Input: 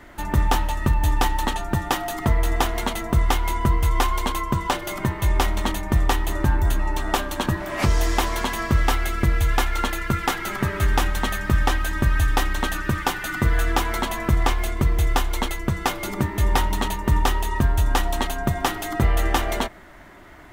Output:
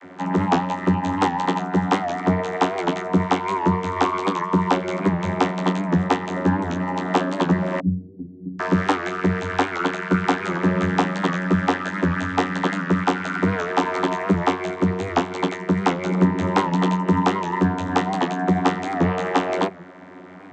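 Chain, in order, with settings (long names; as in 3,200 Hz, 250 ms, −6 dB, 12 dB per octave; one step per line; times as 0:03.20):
0:07.79–0:08.59: inverse Chebyshev low-pass filter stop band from 960 Hz, stop band 70 dB
channel vocoder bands 32, saw 91.6 Hz
wow of a warped record 78 rpm, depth 100 cents
level +5.5 dB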